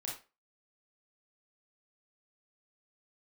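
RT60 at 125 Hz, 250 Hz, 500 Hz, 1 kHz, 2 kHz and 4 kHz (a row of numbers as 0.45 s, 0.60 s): 0.25 s, 0.25 s, 0.30 s, 0.30 s, 0.30 s, 0.25 s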